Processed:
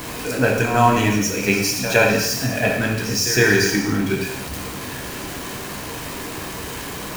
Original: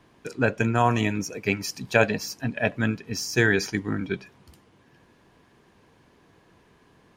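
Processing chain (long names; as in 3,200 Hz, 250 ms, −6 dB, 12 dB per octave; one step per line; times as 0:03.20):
converter with a step at zero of −30.5 dBFS
high-shelf EQ 7,100 Hz +6 dB
notch filter 3,500 Hz, Q 23
backwards echo 113 ms −12 dB
reverb whose tail is shaped and stops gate 320 ms falling, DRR 0 dB
level +2 dB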